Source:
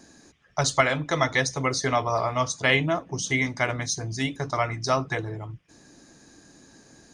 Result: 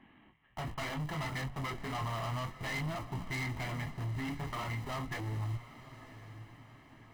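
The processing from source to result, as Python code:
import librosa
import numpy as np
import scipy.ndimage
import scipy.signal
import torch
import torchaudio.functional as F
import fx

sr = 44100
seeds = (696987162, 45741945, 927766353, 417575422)

p1 = fx.cvsd(x, sr, bps=16000)
p2 = fx.hum_notches(p1, sr, base_hz=60, count=5, at=(4.19, 5.15))
p3 = fx.schmitt(p2, sr, flips_db=-37.5)
p4 = p2 + (p3 * librosa.db_to_amplitude(-8.0))
p5 = fx.chorus_voices(p4, sr, voices=2, hz=0.35, base_ms=22, depth_ms=4.4, mix_pct=40)
p6 = np.clip(p5, -10.0 ** (-31.0 / 20.0), 10.0 ** (-31.0 / 20.0))
p7 = p6 + 0.57 * np.pad(p6, (int(1.0 * sr / 1000.0), 0))[:len(p6)]
p8 = fx.echo_diffused(p7, sr, ms=1019, feedback_pct=43, wet_db=-14.5)
y = p8 * librosa.db_to_amplitude(-5.5)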